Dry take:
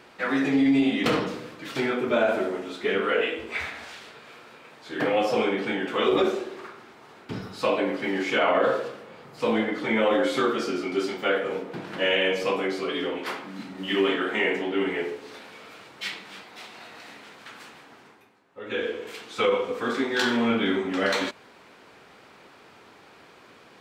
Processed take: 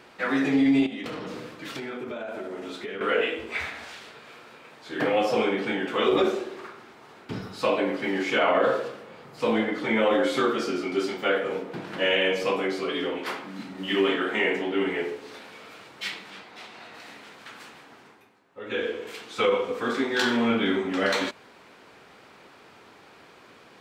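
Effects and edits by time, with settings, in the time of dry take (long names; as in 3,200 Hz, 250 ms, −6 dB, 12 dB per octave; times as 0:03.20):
0:00.86–0:03.01: downward compressor 8 to 1, threshold −31 dBFS
0:16.30–0:16.94: high-shelf EQ 7,800 Hz −9 dB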